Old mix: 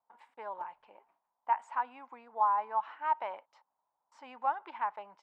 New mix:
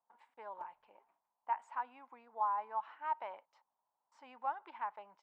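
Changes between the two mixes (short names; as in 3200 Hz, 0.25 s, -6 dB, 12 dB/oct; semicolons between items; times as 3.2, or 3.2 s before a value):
speech -6.5 dB; background -3.5 dB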